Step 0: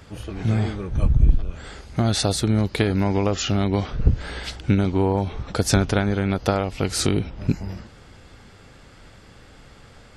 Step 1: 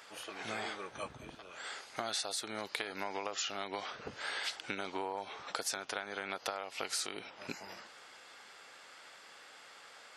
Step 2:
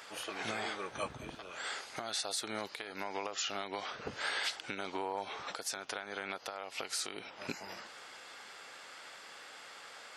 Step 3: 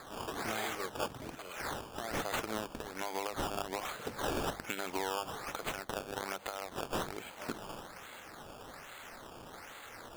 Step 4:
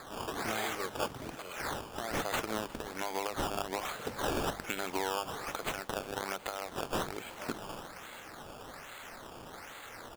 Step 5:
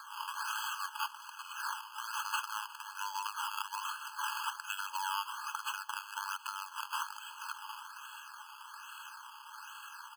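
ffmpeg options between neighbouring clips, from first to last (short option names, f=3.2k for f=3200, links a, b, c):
-af "highpass=780,acompressor=threshold=-32dB:ratio=10,volume=-1.5dB"
-af "alimiter=level_in=3.5dB:limit=-24dB:level=0:latency=1:release=436,volume=-3.5dB,volume=4dB"
-af "acrusher=samples=15:mix=1:aa=0.000001:lfo=1:lforange=15:lforate=1.2,bandreject=f=50:t=h:w=6,bandreject=f=100:t=h:w=6,bandreject=f=150:t=h:w=6,bandreject=f=200:t=h:w=6,volume=1.5dB"
-af "aecho=1:1:358|716|1074|1432:0.0891|0.0481|0.026|0.014,volume=2dB"
-af "afftfilt=real='re*eq(mod(floor(b*sr/1024/840),2),1)':imag='im*eq(mod(floor(b*sr/1024/840),2),1)':win_size=1024:overlap=0.75,volume=2dB"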